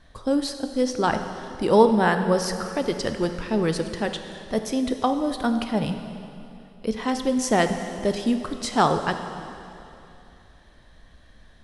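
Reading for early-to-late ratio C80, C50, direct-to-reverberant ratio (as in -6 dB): 8.5 dB, 8.0 dB, 6.5 dB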